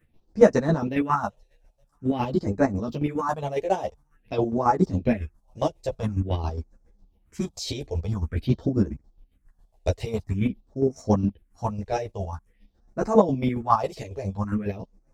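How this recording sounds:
phaser sweep stages 4, 0.48 Hz, lowest notch 210–3,100 Hz
chopped level 7.3 Hz, depth 60%, duty 35%
a shimmering, thickened sound

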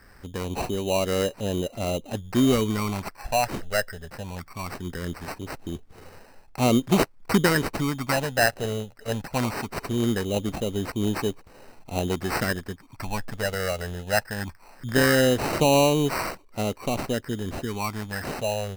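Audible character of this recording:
phaser sweep stages 8, 0.2 Hz, lowest notch 300–2,300 Hz
aliases and images of a low sample rate 3,400 Hz, jitter 0%

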